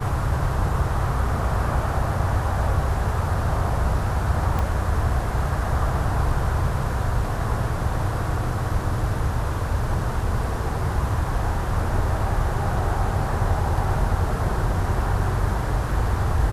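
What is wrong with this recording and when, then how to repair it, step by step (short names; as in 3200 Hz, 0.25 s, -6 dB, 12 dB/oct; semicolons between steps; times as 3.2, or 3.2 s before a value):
4.59 pop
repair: de-click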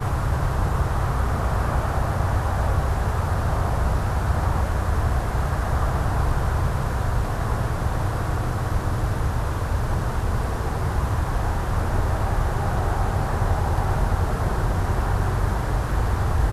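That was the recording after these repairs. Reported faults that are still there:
4.59 pop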